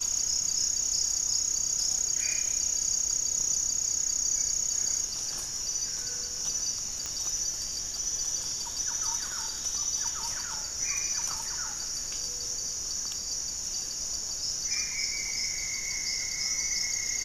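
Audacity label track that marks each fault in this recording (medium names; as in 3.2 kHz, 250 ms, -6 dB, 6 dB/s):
7.060000	7.060000	pop -19 dBFS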